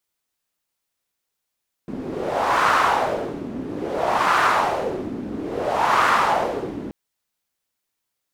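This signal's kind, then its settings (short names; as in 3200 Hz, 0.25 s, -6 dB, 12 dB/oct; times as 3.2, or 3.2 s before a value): wind-like swept noise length 5.03 s, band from 260 Hz, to 1200 Hz, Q 2.9, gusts 3, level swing 13.5 dB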